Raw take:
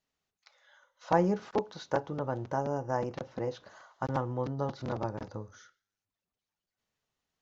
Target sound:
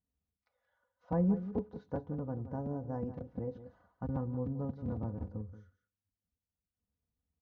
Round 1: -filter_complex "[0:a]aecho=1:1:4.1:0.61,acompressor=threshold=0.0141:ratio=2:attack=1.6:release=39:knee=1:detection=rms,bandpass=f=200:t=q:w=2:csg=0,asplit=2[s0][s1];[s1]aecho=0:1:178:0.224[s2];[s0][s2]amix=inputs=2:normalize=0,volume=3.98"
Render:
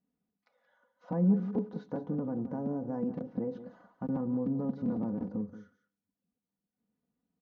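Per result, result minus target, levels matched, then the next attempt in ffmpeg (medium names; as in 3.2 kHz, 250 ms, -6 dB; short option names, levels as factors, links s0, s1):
compression: peak gain reduction +11.5 dB; 125 Hz band -3.5 dB
-filter_complex "[0:a]bandpass=f=200:t=q:w=2:csg=0,aecho=1:1:4.1:0.61,asplit=2[s0][s1];[s1]aecho=0:1:178:0.224[s2];[s0][s2]amix=inputs=2:normalize=0,volume=3.98"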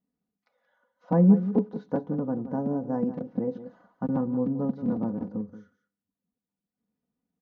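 125 Hz band -3.0 dB
-filter_complex "[0:a]bandpass=f=79:t=q:w=2:csg=0,aecho=1:1:4.1:0.61,asplit=2[s0][s1];[s1]aecho=0:1:178:0.224[s2];[s0][s2]amix=inputs=2:normalize=0,volume=3.98"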